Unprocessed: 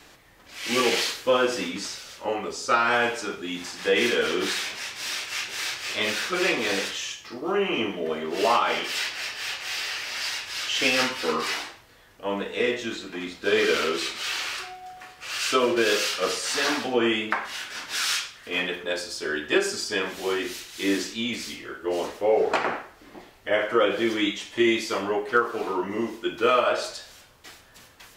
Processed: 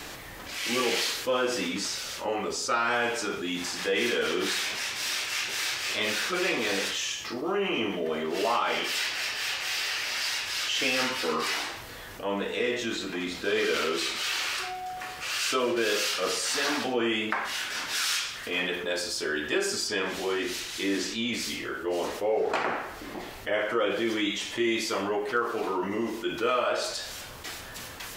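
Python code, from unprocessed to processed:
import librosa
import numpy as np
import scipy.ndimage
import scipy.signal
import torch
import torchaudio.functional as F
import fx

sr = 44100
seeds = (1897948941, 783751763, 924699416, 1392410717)

y = fx.high_shelf(x, sr, hz=11000.0, db=fx.steps((0.0, 4.5), (19.86, -6.5), (21.34, 3.0)))
y = fx.env_flatten(y, sr, amount_pct=50)
y = F.gain(torch.from_numpy(y), -7.0).numpy()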